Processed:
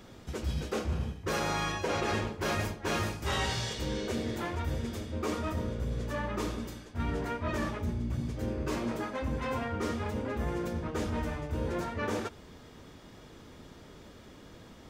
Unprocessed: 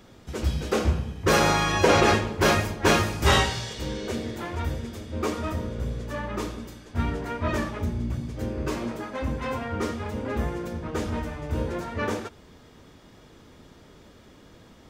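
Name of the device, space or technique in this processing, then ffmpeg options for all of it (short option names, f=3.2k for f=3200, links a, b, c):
compression on the reversed sound: -af "areverse,acompressor=threshold=-29dB:ratio=6,areverse"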